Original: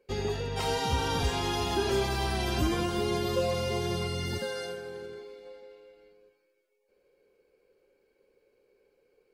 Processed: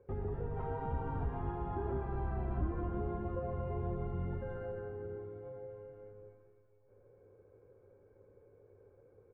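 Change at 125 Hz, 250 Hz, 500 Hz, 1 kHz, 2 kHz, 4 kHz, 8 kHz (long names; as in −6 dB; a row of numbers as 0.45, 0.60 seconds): −4.5 dB, −8.5 dB, −9.5 dB, −9.5 dB, −18.5 dB, below −35 dB, below −40 dB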